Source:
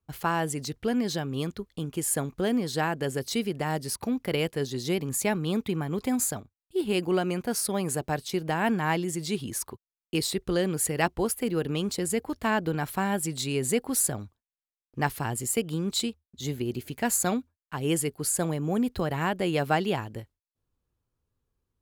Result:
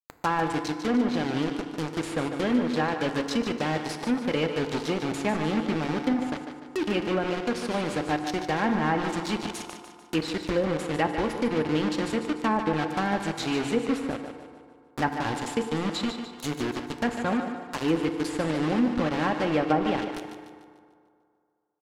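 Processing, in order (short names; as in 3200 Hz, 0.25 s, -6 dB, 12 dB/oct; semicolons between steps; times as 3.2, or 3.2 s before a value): comb 3.7 ms, depth 39%; bit-crush 5-bit; treble ducked by the level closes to 1000 Hz, closed at -19 dBFS; thinning echo 0.148 s, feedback 46%, high-pass 210 Hz, level -8.5 dB; FDN reverb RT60 2.3 s, low-frequency decay 0.85×, high-frequency decay 0.4×, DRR 8 dB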